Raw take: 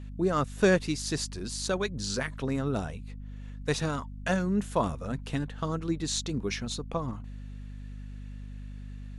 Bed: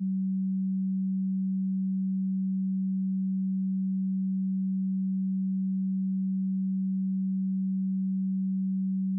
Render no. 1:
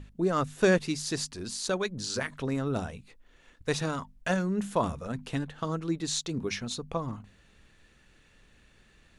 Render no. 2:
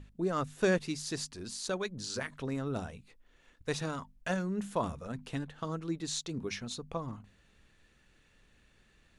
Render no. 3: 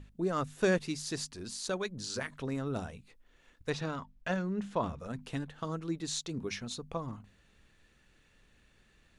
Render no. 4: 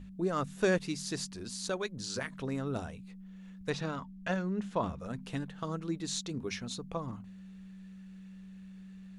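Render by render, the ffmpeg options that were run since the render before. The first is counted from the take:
-af "bandreject=f=50:t=h:w=6,bandreject=f=100:t=h:w=6,bandreject=f=150:t=h:w=6,bandreject=f=200:t=h:w=6,bandreject=f=250:t=h:w=6"
-af "volume=0.562"
-filter_complex "[0:a]asettb=1/sr,asplit=3[s0][s1][s2];[s0]atrim=end=3.704[s3];[s1]atrim=start=3.7:end=5,asetpts=PTS-STARTPTS,afade=t=in:d=0.004:c=qsin,afade=t=out:st=1.296:d=0.004:c=qsin,lowpass=4800[s4];[s2]atrim=start=4.996[s5];[s3][s4]acrossfade=d=0.004:c1=hsin:c2=qsin[s6];[s6][s5]acrossfade=d=0.004:c1=qsin:c2=hsin"
-filter_complex "[1:a]volume=0.0944[s0];[0:a][s0]amix=inputs=2:normalize=0"

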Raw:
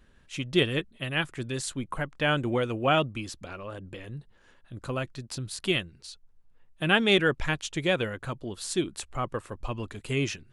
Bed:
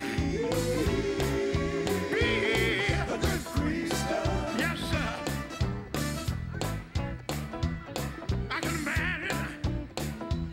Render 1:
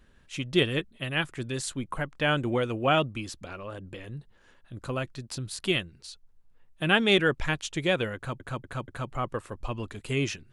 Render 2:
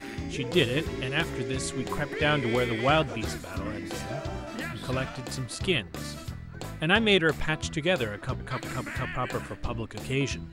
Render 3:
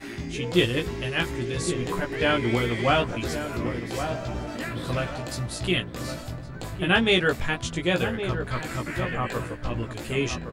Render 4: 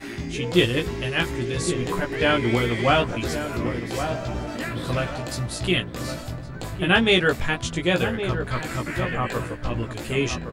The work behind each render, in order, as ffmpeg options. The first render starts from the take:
-filter_complex "[0:a]asplit=5[s0][s1][s2][s3][s4];[s0]atrim=end=8.402[s5];[s1]atrim=start=8.158:end=8.402[s6];[s2]atrim=start=8.158:end=8.402[s7];[s3]atrim=start=8.158:end=8.402[s8];[s4]atrim=start=9.118[s9];[s5][s6]acrossfade=d=0.004:c1=hsin:c2=hsin[s10];[s10][s7]acrossfade=d=0.004:c1=hsin:c2=hsin[s11];[s11][s8]acrossfade=d=0.004:c1=hsin:c2=hsin[s12];[s12][s9]acrossfade=d=0.004:c1=hsin:c2=hsin"
-filter_complex "[1:a]volume=0.501[s0];[0:a][s0]amix=inputs=2:normalize=0"
-filter_complex "[0:a]asplit=2[s0][s1];[s1]adelay=17,volume=0.708[s2];[s0][s2]amix=inputs=2:normalize=0,asplit=2[s3][s4];[s4]adelay=1114,lowpass=f=1200:p=1,volume=0.422,asplit=2[s5][s6];[s6]adelay=1114,lowpass=f=1200:p=1,volume=0.38,asplit=2[s7][s8];[s8]adelay=1114,lowpass=f=1200:p=1,volume=0.38,asplit=2[s9][s10];[s10]adelay=1114,lowpass=f=1200:p=1,volume=0.38[s11];[s3][s5][s7][s9][s11]amix=inputs=5:normalize=0"
-af "volume=1.33"

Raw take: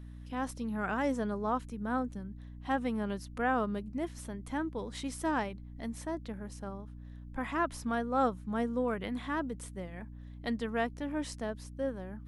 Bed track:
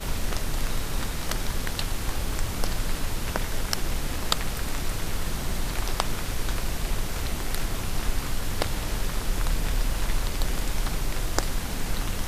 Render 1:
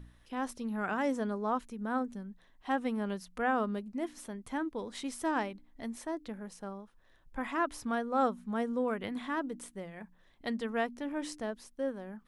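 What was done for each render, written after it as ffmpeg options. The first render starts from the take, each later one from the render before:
-af "bandreject=f=60:t=h:w=4,bandreject=f=120:t=h:w=4,bandreject=f=180:t=h:w=4,bandreject=f=240:t=h:w=4,bandreject=f=300:t=h:w=4"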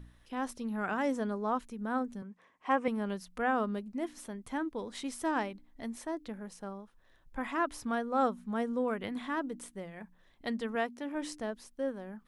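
-filter_complex "[0:a]asettb=1/sr,asplit=3[s0][s1][s2];[s0]atrim=end=2.224[s3];[s1]atrim=start=2.22:end=2.88,asetpts=PTS-STARTPTS,afade=t=in:d=0.004:c=qsin,afade=t=out:st=0.656:d=0.004:c=qsin,highpass=180,equalizer=f=490:t=q:w=4:g=7,equalizer=f=1100:t=q:w=4:g=10,equalizer=f=2300:t=q:w=4:g=8,equalizer=f=3900:t=q:w=4:g=-10,lowpass=f=8900:w=0.5412,lowpass=f=8900:w=1.3066[s4];[s2]atrim=start=2.876[s5];[s3][s4]acrossfade=d=0.004:c1=hsin:c2=qsin[s6];[s6][s5]acrossfade=d=0.004:c1=qsin:c2=hsin,asettb=1/sr,asplit=3[s7][s8][s9];[s7]atrim=end=10.754[s10];[s8]atrim=start=10.75:end=11.15,asetpts=PTS-STARTPTS,afade=t=in:d=0.004:c=qsin,afade=t=out:st=0.396:d=0.004:c=qsin,highpass=f=180:p=1[s11];[s9]atrim=start=11.146[s12];[s10][s11]acrossfade=d=0.004:c1=hsin:c2=qsin[s13];[s13][s12]acrossfade=d=0.004:c1=qsin:c2=hsin"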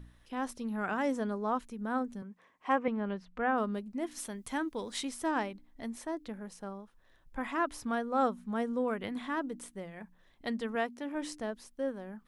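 -filter_complex "[0:a]asettb=1/sr,asplit=3[s0][s1][s2];[s0]atrim=end=2.784[s3];[s1]atrim=start=2.78:end=3.58,asetpts=PTS-STARTPTS,afade=t=in:d=0.004:c=qsin,afade=t=out:st=0.796:d=0.004:c=qsin,lowpass=2800[s4];[s2]atrim=start=3.576[s5];[s3][s4]acrossfade=d=0.004:c1=hsin:c2=qsin[s6];[s6][s5]acrossfade=d=0.004:c1=qsin:c2=hsin,asettb=1/sr,asplit=3[s7][s8][s9];[s7]atrim=end=4.114[s10];[s8]atrim=start=4.11:end=5.05,asetpts=PTS-STARTPTS,afade=t=in:d=0.004:c=qsin,afade=t=out:st=0.936:d=0.004:c=qsin,highshelf=f=2200:g=8.5[s11];[s9]atrim=start=5.046[s12];[s10][s11]acrossfade=d=0.004:c1=hsin:c2=qsin[s13];[s13][s12]acrossfade=d=0.004:c1=qsin:c2=hsin"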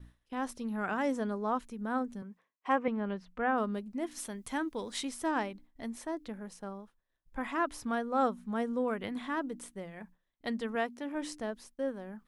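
-af "agate=range=0.0224:threshold=0.00316:ratio=3:detection=peak"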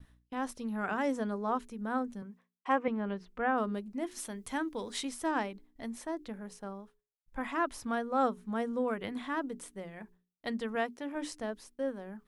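-af "agate=range=0.0224:threshold=0.00126:ratio=3:detection=peak,bandreject=f=60:t=h:w=6,bandreject=f=120:t=h:w=6,bandreject=f=180:t=h:w=6,bandreject=f=240:t=h:w=6,bandreject=f=300:t=h:w=6,bandreject=f=360:t=h:w=6,bandreject=f=420:t=h:w=6"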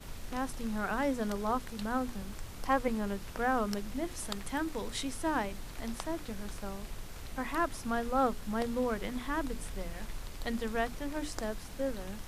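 -filter_complex "[1:a]volume=0.168[s0];[0:a][s0]amix=inputs=2:normalize=0"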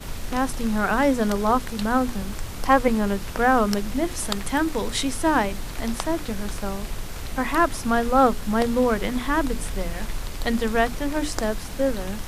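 -af "volume=3.76"

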